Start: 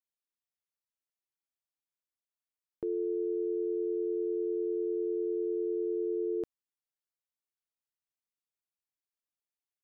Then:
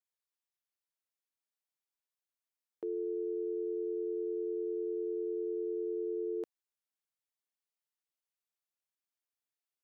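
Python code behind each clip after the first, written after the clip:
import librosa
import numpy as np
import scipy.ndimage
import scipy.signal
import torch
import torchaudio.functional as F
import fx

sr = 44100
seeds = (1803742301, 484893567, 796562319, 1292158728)

y = scipy.signal.sosfilt(scipy.signal.butter(2, 350.0, 'highpass', fs=sr, output='sos'), x)
y = y * 10.0 ** (-1.5 / 20.0)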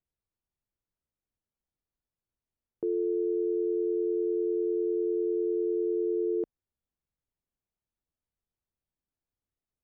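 y = fx.tilt_eq(x, sr, slope=-5.5)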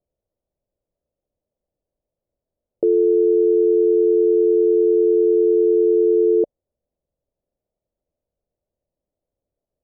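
y = fx.lowpass_res(x, sr, hz=580.0, q=4.9)
y = y * 10.0 ** (7.5 / 20.0)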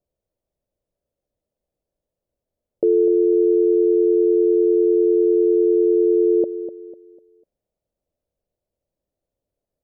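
y = fx.echo_feedback(x, sr, ms=249, feedback_pct=34, wet_db=-11.5)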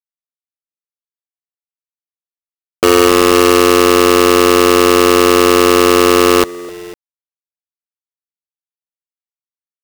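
y = fx.quant_companded(x, sr, bits=2)
y = y * 10.0 ** (-1.0 / 20.0)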